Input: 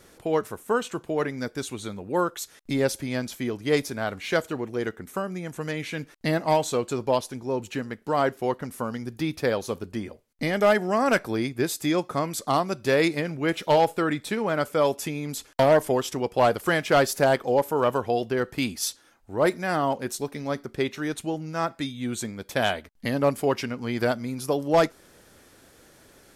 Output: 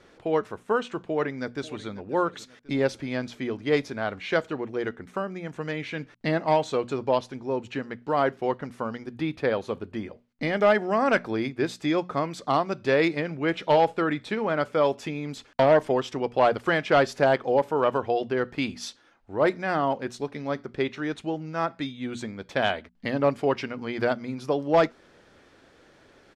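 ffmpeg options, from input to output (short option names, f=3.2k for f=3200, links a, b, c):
-filter_complex "[0:a]asplit=2[a][b];[b]afade=t=in:st=1.03:d=0.01,afade=t=out:st=1.9:d=0.01,aecho=0:1:540|1080|1620|2160:0.133352|0.0666761|0.033338|0.016669[c];[a][c]amix=inputs=2:normalize=0,asettb=1/sr,asplit=3[d][e][f];[d]atrim=end=9.114[g];[e]atrim=start=9.11:end=9.96,asetpts=PTS-STARTPTS,afade=t=in:d=0.004:c=qsin,afade=t=out:st=0.846:d=0.004:c=qsin,equalizer=f=5.5k:t=o:w=0.55:g=-6.5[h];[f]atrim=start=9.956[i];[g][h]acrossfade=d=0.004:c1=hsin:c2=qsin[j];[j][i]acrossfade=d=0.004:c1=qsin:c2=hsin,lowpass=3.8k,lowshelf=f=120:g=-4.5,bandreject=f=60:t=h:w=6,bandreject=f=120:t=h:w=6,bandreject=f=180:t=h:w=6,bandreject=f=240:t=h:w=6"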